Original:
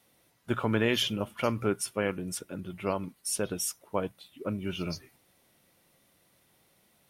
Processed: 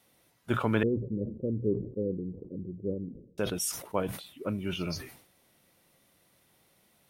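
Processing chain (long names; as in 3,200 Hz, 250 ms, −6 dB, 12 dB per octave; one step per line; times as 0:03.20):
0:00.83–0:03.38: Butterworth low-pass 510 Hz 72 dB per octave
level that may fall only so fast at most 93 dB per second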